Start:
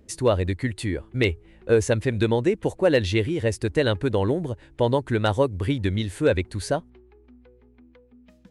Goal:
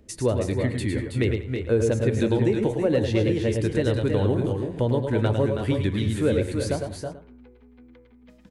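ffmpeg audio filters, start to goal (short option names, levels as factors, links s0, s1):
-filter_complex "[0:a]bandreject=f=90.12:t=h:w=4,bandreject=f=180.24:t=h:w=4,bandreject=f=270.36:t=h:w=4,bandreject=f=360.48:t=h:w=4,bandreject=f=450.6:t=h:w=4,bandreject=f=540.72:t=h:w=4,bandreject=f=630.84:t=h:w=4,bandreject=f=720.96:t=h:w=4,bandreject=f=811.08:t=h:w=4,bandreject=f=901.2:t=h:w=4,bandreject=f=991.32:t=h:w=4,bandreject=f=1081.44:t=h:w=4,bandreject=f=1171.56:t=h:w=4,bandreject=f=1261.68:t=h:w=4,bandreject=f=1351.8:t=h:w=4,bandreject=f=1441.92:t=h:w=4,bandreject=f=1532.04:t=h:w=4,bandreject=f=1622.16:t=h:w=4,bandreject=f=1712.28:t=h:w=4,bandreject=f=1802.4:t=h:w=4,bandreject=f=1892.52:t=h:w=4,bandreject=f=1982.64:t=h:w=4,bandreject=f=2072.76:t=h:w=4,bandreject=f=2162.88:t=h:w=4,bandreject=f=2253:t=h:w=4,bandreject=f=2343.12:t=h:w=4,bandreject=f=2433.24:t=h:w=4,acrossover=split=500[s0][s1];[s1]acompressor=threshold=0.02:ratio=3[s2];[s0][s2]amix=inputs=2:normalize=0,asplit=2[s3][s4];[s4]aecho=0:1:101|110|192|323|346|436:0.316|0.422|0.119|0.447|0.266|0.1[s5];[s3][s5]amix=inputs=2:normalize=0"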